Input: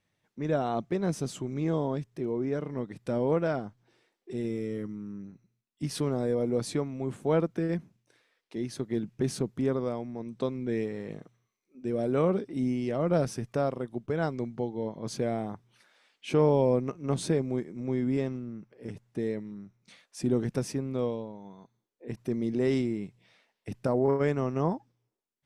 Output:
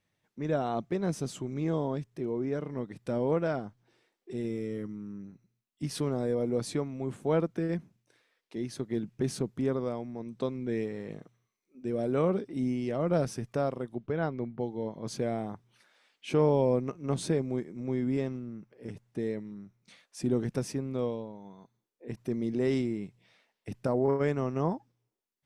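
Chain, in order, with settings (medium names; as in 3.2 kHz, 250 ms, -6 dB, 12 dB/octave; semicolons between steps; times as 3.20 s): 13.94–14.59 s: low-pass 5 kHz -> 2.2 kHz 12 dB/octave; trim -1.5 dB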